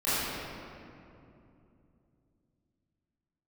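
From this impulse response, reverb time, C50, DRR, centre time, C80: 2.8 s, -6.0 dB, -16.0 dB, 186 ms, -3.0 dB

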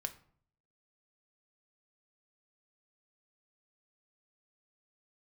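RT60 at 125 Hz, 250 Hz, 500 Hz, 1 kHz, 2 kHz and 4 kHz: 0.85 s, 0.70 s, 0.55 s, 0.55 s, 0.40 s, 0.35 s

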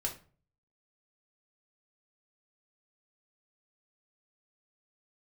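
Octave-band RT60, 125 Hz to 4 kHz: 0.70 s, 0.50 s, 0.45 s, 0.40 s, 0.35 s, 0.30 s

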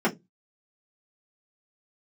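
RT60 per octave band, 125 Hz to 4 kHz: 0.30 s, 0.25 s, 0.20 s, 0.10 s, 0.15 s, 0.15 s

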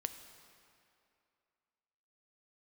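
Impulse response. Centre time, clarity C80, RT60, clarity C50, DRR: 25 ms, 10.5 dB, 2.6 s, 9.5 dB, 8.0 dB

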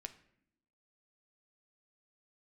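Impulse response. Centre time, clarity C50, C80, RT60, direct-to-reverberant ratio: 6 ms, 14.0 dB, 17.5 dB, no single decay rate, 7.5 dB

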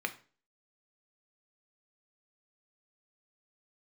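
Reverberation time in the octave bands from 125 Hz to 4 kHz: 0.40 s, 0.45 s, 0.40 s, 0.35 s, 0.35 s, 0.35 s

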